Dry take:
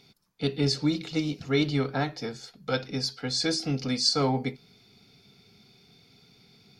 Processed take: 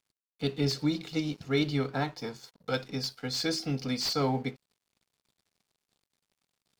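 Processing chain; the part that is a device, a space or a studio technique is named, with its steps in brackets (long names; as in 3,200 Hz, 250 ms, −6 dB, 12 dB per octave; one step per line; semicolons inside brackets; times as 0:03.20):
early transistor amplifier (dead-zone distortion −51.5 dBFS; slew-rate limiting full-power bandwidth 240 Hz)
0:02.02–0:02.59: parametric band 980 Hz +8 dB 0.26 octaves
level −2.5 dB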